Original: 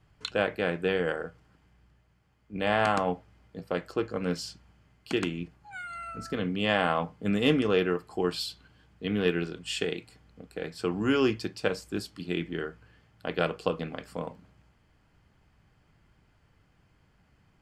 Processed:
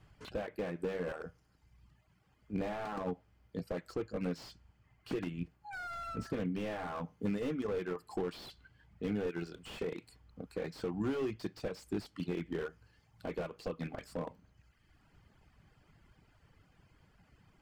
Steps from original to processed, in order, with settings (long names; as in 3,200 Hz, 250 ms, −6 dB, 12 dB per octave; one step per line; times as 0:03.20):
reverb reduction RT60 1 s
downward compressor 12 to 1, threshold −32 dBFS, peak gain reduction 14 dB
slew-rate limiting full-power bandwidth 10 Hz
level +2 dB